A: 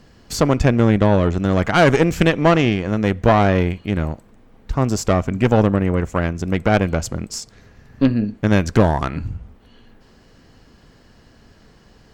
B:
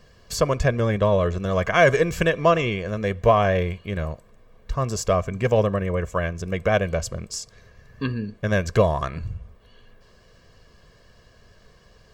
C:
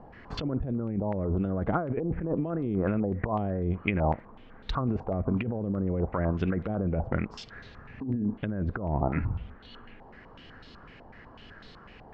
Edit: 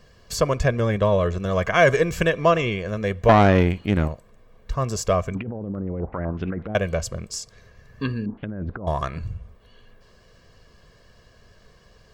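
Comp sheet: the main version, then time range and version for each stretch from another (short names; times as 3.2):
B
3.29–4.08 from A
5.35–6.75 from C
8.26–8.87 from C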